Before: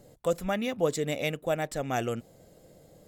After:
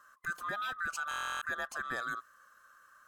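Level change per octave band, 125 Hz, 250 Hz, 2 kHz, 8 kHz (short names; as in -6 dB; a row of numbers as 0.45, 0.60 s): -21.5, -20.5, +3.5, -6.0 dB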